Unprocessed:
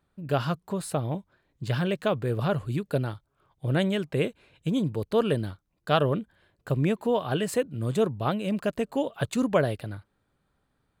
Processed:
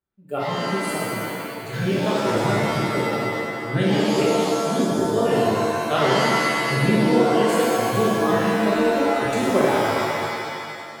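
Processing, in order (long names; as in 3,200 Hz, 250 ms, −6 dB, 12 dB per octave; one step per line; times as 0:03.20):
noise reduction from a noise print of the clip's start 17 dB
reverb with rising layers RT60 2.1 s, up +7 semitones, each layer −2 dB, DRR −7 dB
level −2.5 dB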